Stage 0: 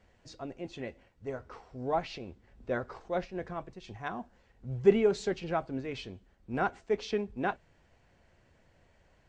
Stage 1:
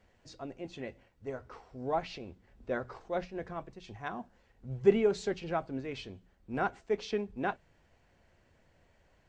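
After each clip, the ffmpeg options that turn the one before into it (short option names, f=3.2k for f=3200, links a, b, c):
-af "bandreject=f=60:t=h:w=6,bandreject=f=120:t=h:w=6,bandreject=f=180:t=h:w=6,volume=-1.5dB"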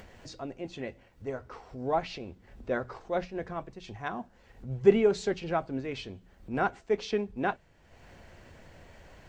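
-af "acompressor=mode=upward:threshold=-44dB:ratio=2.5,volume=3.5dB"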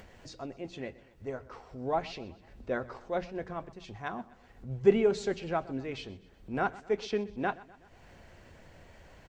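-af "aecho=1:1:125|250|375|500:0.1|0.053|0.0281|0.0149,volume=-2dB"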